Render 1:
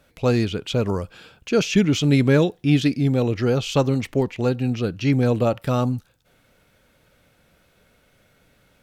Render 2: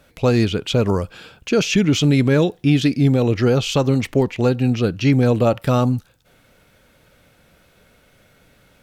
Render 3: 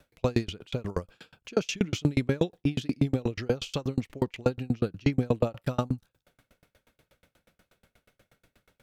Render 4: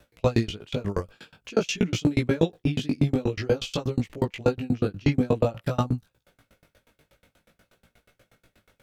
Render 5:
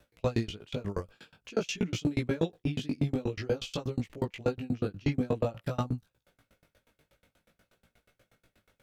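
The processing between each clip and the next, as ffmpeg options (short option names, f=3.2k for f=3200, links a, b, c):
-af "alimiter=limit=-12dB:level=0:latency=1:release=136,volume=5dB"
-af "aeval=exprs='val(0)*pow(10,-35*if(lt(mod(8.3*n/s,1),2*abs(8.3)/1000),1-mod(8.3*n/s,1)/(2*abs(8.3)/1000),(mod(8.3*n/s,1)-2*abs(8.3)/1000)/(1-2*abs(8.3)/1000))/20)':c=same,volume=-3dB"
-af "flanger=delay=17:depth=3.1:speed=0.5,volume=6.5dB"
-af "asoftclip=type=tanh:threshold=-9dB,volume=-6dB"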